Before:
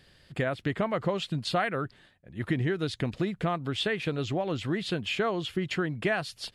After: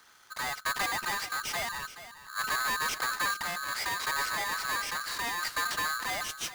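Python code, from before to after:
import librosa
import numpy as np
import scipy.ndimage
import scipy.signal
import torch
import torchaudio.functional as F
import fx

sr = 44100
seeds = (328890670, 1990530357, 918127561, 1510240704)

p1 = fx.highpass(x, sr, hz=68.0, slope=6)
p2 = fx.peak_eq(p1, sr, hz=1900.0, db=-13.0, octaves=1.0)
p3 = fx.hum_notches(p2, sr, base_hz=60, count=3)
p4 = fx.level_steps(p3, sr, step_db=15)
p5 = p3 + (p4 * librosa.db_to_amplitude(-2.0))
p6 = np.clip(p5, -10.0 ** (-31.5 / 20.0), 10.0 ** (-31.5 / 20.0))
p7 = fx.tremolo_random(p6, sr, seeds[0], hz=3.5, depth_pct=55)
p8 = p7 + 10.0 ** (-13.5 / 20.0) * np.pad(p7, (int(425 * sr / 1000.0), 0))[:len(p7)]
p9 = p8 * np.sign(np.sin(2.0 * np.pi * 1400.0 * np.arange(len(p8)) / sr))
y = p9 * librosa.db_to_amplitude(4.0)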